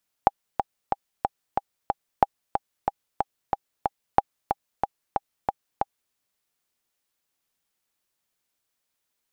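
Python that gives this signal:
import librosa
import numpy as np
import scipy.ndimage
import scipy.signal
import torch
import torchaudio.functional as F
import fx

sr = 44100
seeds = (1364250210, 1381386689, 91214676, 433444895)

y = fx.click_track(sr, bpm=184, beats=6, bars=3, hz=804.0, accent_db=7.0, level_db=-2.0)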